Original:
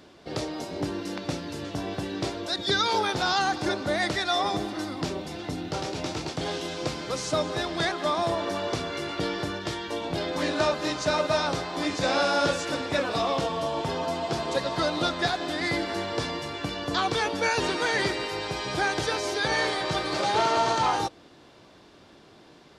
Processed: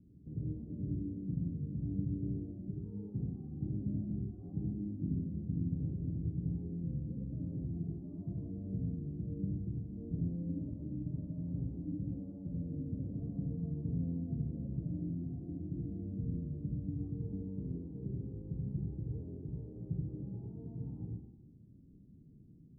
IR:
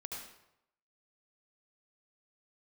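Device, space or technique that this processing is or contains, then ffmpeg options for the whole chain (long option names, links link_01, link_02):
club heard from the street: -filter_complex "[0:a]alimiter=limit=-21dB:level=0:latency=1,lowpass=frequency=210:width=0.5412,lowpass=frequency=210:width=1.3066[link_01];[1:a]atrim=start_sample=2205[link_02];[link_01][link_02]afir=irnorm=-1:irlink=0,volume=5dB"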